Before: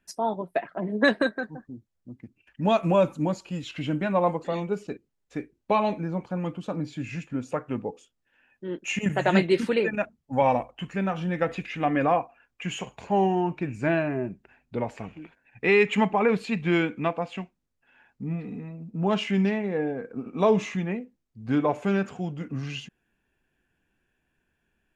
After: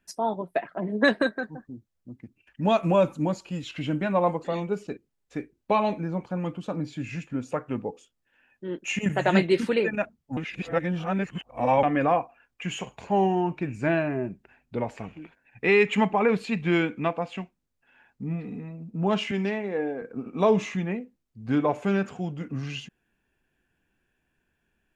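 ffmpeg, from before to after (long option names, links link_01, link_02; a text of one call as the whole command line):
ffmpeg -i in.wav -filter_complex "[0:a]asettb=1/sr,asplit=3[link_01][link_02][link_03];[link_01]atrim=end=19.314[link_04];[link_02]atrim=start=19.31:end=20.02,asetpts=PTS-STARTPTS,afade=type=in:duration=0.004:curve=qsin,afade=type=out:start_time=0.706:duration=0.004:curve=qsin,highpass=250[link_05];[link_03]atrim=start=20.016[link_06];[link_04][link_05]acrossfade=duration=0.004:curve1=hsin:curve2=qsin[link_07];[link_07][link_06]acrossfade=duration=0.004:curve1=qsin:curve2=hsin,asplit=3[link_08][link_09][link_10];[link_08]atrim=end=10.372[link_11];[link_09]atrim=start=10.368:end=11.832,asetpts=PTS-STARTPTS,areverse[link_12];[link_10]atrim=start=11.828[link_13];[link_11][link_12]acrossfade=duration=0.004:curve1=hsin:curve2=hsin[link_14];[link_14][link_13]acrossfade=duration=0.004:curve1=hsin:curve2=hsin" out.wav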